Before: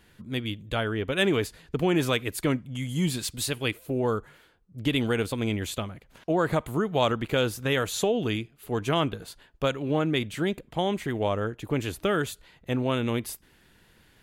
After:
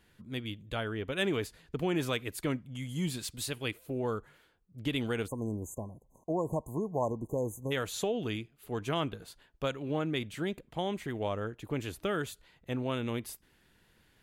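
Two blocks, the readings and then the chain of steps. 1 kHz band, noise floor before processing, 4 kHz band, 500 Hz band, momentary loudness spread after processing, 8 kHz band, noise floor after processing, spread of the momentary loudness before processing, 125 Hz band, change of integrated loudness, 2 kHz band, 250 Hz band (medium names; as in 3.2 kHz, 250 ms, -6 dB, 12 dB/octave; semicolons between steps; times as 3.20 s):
-7.5 dB, -60 dBFS, -8.0 dB, -7.0 dB, 8 LU, -7.0 dB, -67 dBFS, 8 LU, -7.0 dB, -7.0 dB, -8.0 dB, -7.0 dB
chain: spectral selection erased 5.28–7.72 s, 1.1–6.1 kHz; trim -7 dB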